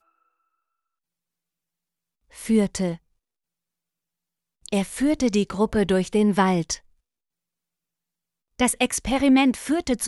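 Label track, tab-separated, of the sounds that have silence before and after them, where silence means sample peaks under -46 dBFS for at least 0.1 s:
2.320000	2.970000	sound
4.660000	6.790000	sound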